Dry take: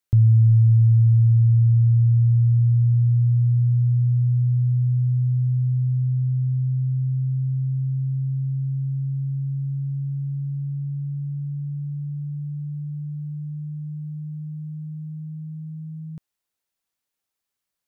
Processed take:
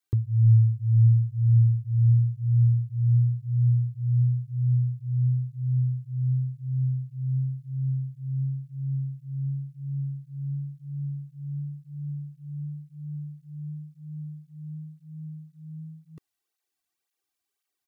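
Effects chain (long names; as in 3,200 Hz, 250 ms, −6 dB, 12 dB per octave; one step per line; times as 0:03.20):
comb filter 2.6 ms
through-zero flanger with one copy inverted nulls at 1.9 Hz, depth 2.7 ms
level +1 dB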